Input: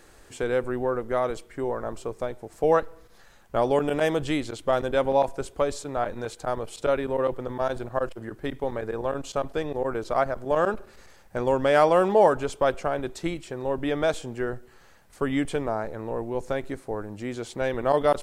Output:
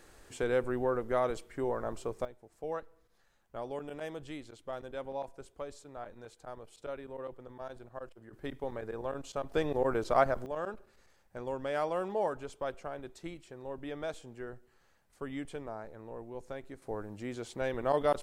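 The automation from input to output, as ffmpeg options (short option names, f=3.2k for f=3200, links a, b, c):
-af "asetnsamples=n=441:p=0,asendcmd='2.25 volume volume -17dB;8.33 volume volume -9dB;9.52 volume volume -2dB;10.46 volume volume -14dB;16.82 volume volume -7dB',volume=-4.5dB"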